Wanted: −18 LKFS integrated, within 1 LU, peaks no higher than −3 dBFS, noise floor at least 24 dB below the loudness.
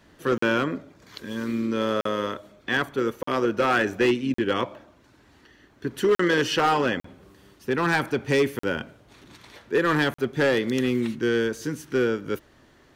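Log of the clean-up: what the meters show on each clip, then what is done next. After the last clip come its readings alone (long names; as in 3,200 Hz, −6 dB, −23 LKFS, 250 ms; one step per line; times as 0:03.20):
share of clipped samples 1.2%; peaks flattened at −15.0 dBFS; number of dropouts 8; longest dropout 44 ms; integrated loudness −25.0 LKFS; sample peak −15.0 dBFS; target loudness −18.0 LKFS
→ clipped peaks rebuilt −15 dBFS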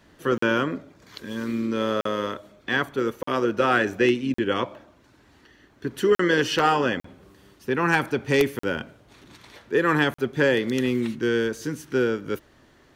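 share of clipped samples 0.0%; number of dropouts 8; longest dropout 44 ms
→ repair the gap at 0:00.38/0:02.01/0:03.23/0:04.34/0:06.15/0:07.00/0:08.59/0:10.14, 44 ms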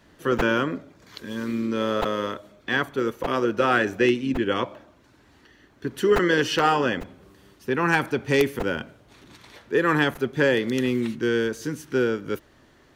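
number of dropouts 0; integrated loudness −24.0 LKFS; sample peak −6.0 dBFS; target loudness −18.0 LKFS
→ level +6 dB
brickwall limiter −3 dBFS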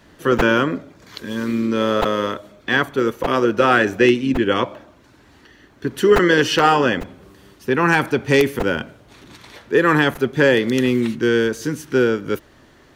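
integrated loudness −18.0 LKFS; sample peak −3.0 dBFS; background noise floor −51 dBFS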